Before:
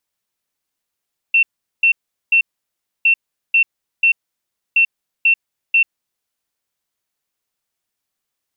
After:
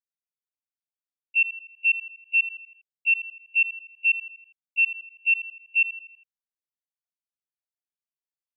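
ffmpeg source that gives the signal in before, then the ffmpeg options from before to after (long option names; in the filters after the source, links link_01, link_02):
-f lavfi -i "aevalsrc='0.355*sin(2*PI*2700*t)*clip(min(mod(mod(t,1.71),0.49),0.09-mod(mod(t,1.71),0.49))/0.005,0,1)*lt(mod(t,1.71),1.47)':duration=5.13:sample_rate=44100"
-af "agate=range=-28dB:threshold=-12dB:ratio=16:detection=peak,aecho=1:1:81|162|243|324|405:0.224|0.11|0.0538|0.0263|0.0129"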